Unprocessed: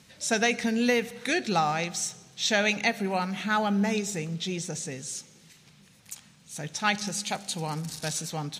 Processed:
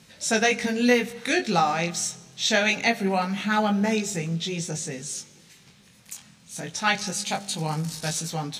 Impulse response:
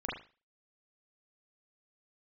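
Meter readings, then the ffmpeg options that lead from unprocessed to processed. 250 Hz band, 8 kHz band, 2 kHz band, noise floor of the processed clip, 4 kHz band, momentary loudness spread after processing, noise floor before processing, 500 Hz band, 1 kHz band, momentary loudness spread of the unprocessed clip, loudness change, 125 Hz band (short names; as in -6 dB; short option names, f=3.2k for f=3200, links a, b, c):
+3.0 dB, +3.0 dB, +3.0 dB, -55 dBFS, +3.0 dB, 12 LU, -57 dBFS, +3.5 dB, +3.0 dB, 12 LU, +3.0 dB, +3.5 dB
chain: -af "flanger=delay=18:depth=5.6:speed=0.24,volume=6dB"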